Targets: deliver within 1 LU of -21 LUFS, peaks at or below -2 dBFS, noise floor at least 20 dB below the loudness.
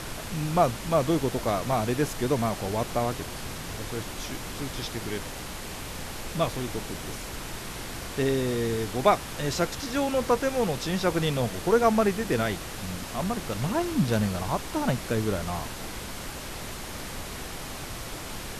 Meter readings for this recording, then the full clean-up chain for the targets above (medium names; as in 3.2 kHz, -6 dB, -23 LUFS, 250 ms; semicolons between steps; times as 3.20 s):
noise floor -38 dBFS; noise floor target -49 dBFS; loudness -28.5 LUFS; peak level -6.5 dBFS; loudness target -21.0 LUFS
-> noise print and reduce 11 dB; trim +7.5 dB; peak limiter -2 dBFS